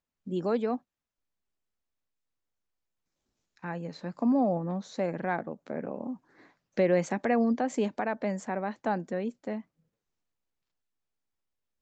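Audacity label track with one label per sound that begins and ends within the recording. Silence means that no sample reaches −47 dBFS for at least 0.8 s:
3.570000	9.610000	sound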